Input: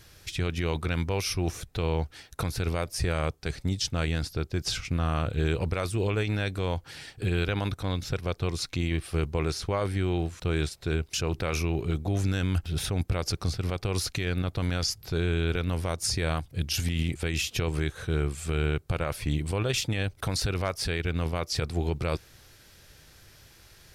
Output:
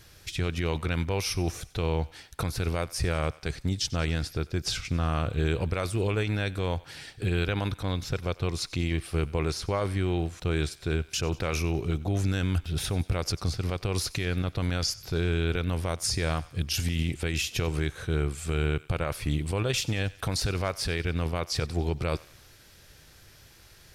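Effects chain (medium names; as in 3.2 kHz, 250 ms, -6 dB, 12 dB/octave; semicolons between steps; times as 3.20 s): thinning echo 94 ms, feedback 56%, high-pass 790 Hz, level -19 dB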